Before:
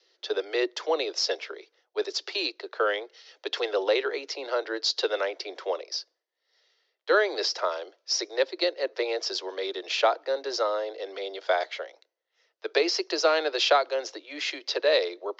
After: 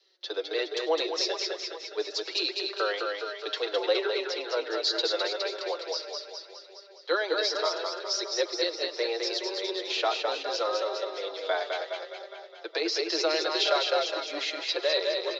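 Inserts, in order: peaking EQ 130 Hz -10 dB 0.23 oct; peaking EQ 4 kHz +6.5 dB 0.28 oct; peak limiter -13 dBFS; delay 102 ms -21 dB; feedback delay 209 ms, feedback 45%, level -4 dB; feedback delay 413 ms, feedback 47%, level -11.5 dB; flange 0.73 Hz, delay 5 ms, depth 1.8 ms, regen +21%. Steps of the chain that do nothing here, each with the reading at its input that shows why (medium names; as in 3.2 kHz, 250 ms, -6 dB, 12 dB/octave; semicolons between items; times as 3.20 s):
peaking EQ 130 Hz: input has nothing below 270 Hz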